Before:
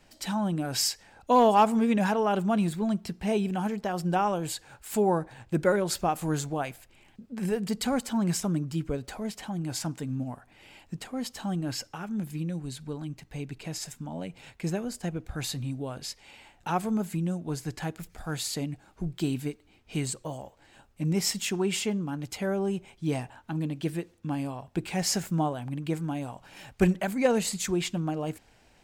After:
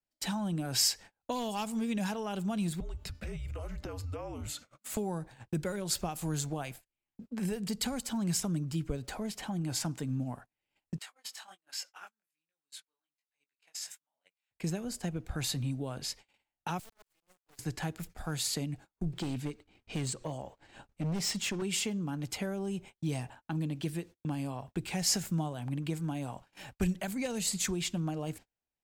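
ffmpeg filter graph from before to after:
-filter_complex "[0:a]asettb=1/sr,asplit=3[a][b][c];[a]atrim=end=2.804[d];[b]atrim=start=2.8:end=4.97,asetpts=PTS-STARTPTS,afade=t=in:d=0.004:c=qsin,afade=t=out:st=2.166:d=0.004:c=qsin,afreqshift=-260,bandreject=f=296:t=h:w=4,bandreject=f=592:t=h:w=4,bandreject=f=888:t=h:w=4,bandreject=f=1.184k:t=h:w=4,bandreject=f=1.48k:t=h:w=4,bandreject=f=1.776k:t=h:w=4,bandreject=f=2.072k:t=h:w=4,bandreject=f=2.368k:t=h:w=4,bandreject=f=2.664k:t=h:w=4,bandreject=f=2.96k:t=h:w=4,bandreject=f=3.256k:t=h:w=4,bandreject=f=3.552k:t=h:w=4,bandreject=f=3.848k:t=h:w=4,bandreject=f=4.144k:t=h:w=4,bandreject=f=4.44k:t=h:w=4,bandreject=f=4.736k:t=h:w=4,bandreject=f=5.032k:t=h:w=4,bandreject=f=5.328k:t=h:w=4,bandreject=f=5.624k:t=h:w=4,bandreject=f=5.92k:t=h:w=4,bandreject=f=6.216k:t=h:w=4,bandreject=f=6.512k:t=h:w=4,bandreject=f=6.808k:t=h:w=4,bandreject=f=7.104k:t=h:w=4,acompressor=threshold=-35dB:ratio=12:attack=3.2:release=140:knee=1:detection=peak[e];[c]atrim=start=4.966[f];[d][e]acrossfade=d=0.004:c1=hsin:c2=qsin[g];[g][f]acrossfade=d=0.004:c1=qsin:c2=hsin,asettb=1/sr,asplit=3[h][i][j];[h]atrim=end=10.984[k];[i]atrim=start=10.98:end=14.51,asetpts=PTS-STARTPTS,afade=t=in:d=0.004:c=qsin,afade=t=out:st=3.526:d=0.004:c=qsin,highpass=1.2k,flanger=delay=19:depth=4.4:speed=1.3[l];[j]atrim=start=14.506[m];[k][l]acrossfade=d=0.004:c1=hsin:c2=qsin[n];[n][m]acrossfade=d=0.004:c1=qsin:c2=hsin,asettb=1/sr,asplit=3[o][p][q];[o]atrim=end=16.794[r];[p]atrim=start=16.79:end=17.59,asetpts=PTS-STARTPTS,afade=t=in:d=0.004:c=qsin,afade=t=out:st=0.796:d=0.004:c=qsin,highpass=f=470:w=0.5412,highpass=f=470:w=1.3066,acompressor=threshold=-47dB:ratio=3:attack=3.2:release=140:knee=1:detection=peak,acrusher=bits=5:dc=4:mix=0:aa=0.000001[s];[q]atrim=start=17.586[t];[r][s]acrossfade=d=0.004:c1=hsin:c2=qsin[u];[u][t]acrossfade=d=0.004:c1=qsin:c2=hsin,asettb=1/sr,asplit=3[v][w][x];[v]atrim=end=19.134[y];[w]atrim=start=19.13:end=21.62,asetpts=PTS-STARTPTS,afade=t=in:d=0.004:c=qsin,afade=t=out:st=2.486:d=0.004:c=qsin,equalizer=f=14k:w=0.77:g=-11.5,acompressor=mode=upward:threshold=-38dB:ratio=2.5:attack=3.2:release=140:knee=2.83:detection=peak,volume=28.5dB,asoftclip=hard,volume=-28.5dB[z];[x]atrim=start=21.616[aa];[y][z]acrossfade=d=0.004:c1=hsin:c2=qsin[ab];[ab][aa]acrossfade=d=0.004:c1=qsin:c2=hsin,acrossover=split=150|3000[ac][ad][ae];[ad]acompressor=threshold=-34dB:ratio=10[af];[ac][af][ae]amix=inputs=3:normalize=0,agate=range=-36dB:threshold=-47dB:ratio=16:detection=peak"

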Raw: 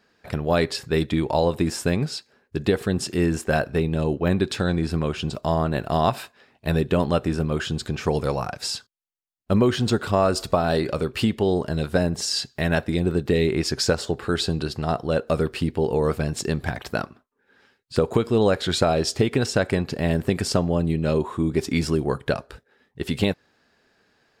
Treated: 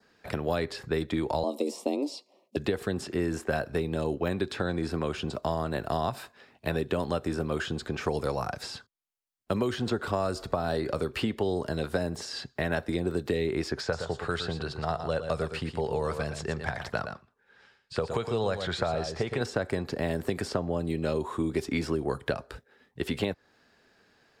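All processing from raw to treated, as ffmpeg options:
-filter_complex "[0:a]asettb=1/sr,asplit=3[a][b][c];[a]atrim=end=1.434[d];[b]atrim=start=1.43:end=2.56,asetpts=PTS-STARTPTS,afade=t=in:d=0.004:c=qsin,afade=t=out:st=1.126:d=0.004:c=qsin,afreqshift=140,asuperstop=centerf=1600:order=4:qfactor=1.1[e];[c]atrim=start=2.556[f];[d][e]acrossfade=d=0.004:c1=hsin:c2=qsin[g];[g][f]acrossfade=d=0.004:c1=qsin:c2=hsin,asettb=1/sr,asplit=3[h][i][j];[h]atrim=end=13.814[k];[i]atrim=start=13.81:end=19.41,asetpts=PTS-STARTPTS,afade=t=in:d=0.004:c=qsin,afade=t=out:st=5.596:d=0.004:c=qsin,lowpass=8.6k,equalizer=f=290:w=1.5:g=-10.5,aecho=1:1:115:0.316,atrim=end_sample=246960[l];[j]atrim=start=19.406[m];[k][l]acrossfade=d=0.004:c1=hsin:c2=qsin[n];[n][m]acrossfade=d=0.004:c1=qsin:c2=hsin,adynamicequalizer=threshold=0.00447:dfrequency=2700:dqfactor=2.3:tfrequency=2700:tqfactor=2.3:attack=5:release=100:ratio=0.375:range=3:mode=cutabove:tftype=bell,acrossover=split=100|250|3100[o][p][q][r];[o]acompressor=threshold=-41dB:ratio=4[s];[p]acompressor=threshold=-41dB:ratio=4[t];[q]acompressor=threshold=-27dB:ratio=4[u];[r]acompressor=threshold=-46dB:ratio=4[v];[s][t][u][v]amix=inputs=4:normalize=0"

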